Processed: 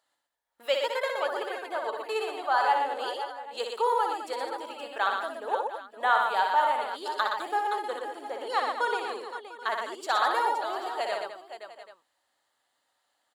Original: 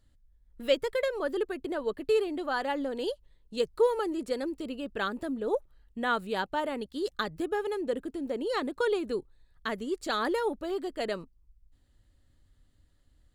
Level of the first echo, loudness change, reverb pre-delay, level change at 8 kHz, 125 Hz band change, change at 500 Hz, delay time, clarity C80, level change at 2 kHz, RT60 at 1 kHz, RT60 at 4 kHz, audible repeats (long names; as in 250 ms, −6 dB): −5.0 dB, +2.5 dB, no reverb audible, +2.5 dB, below −20 dB, −2.5 dB, 62 ms, no reverb audible, +5.0 dB, no reverb audible, no reverb audible, 6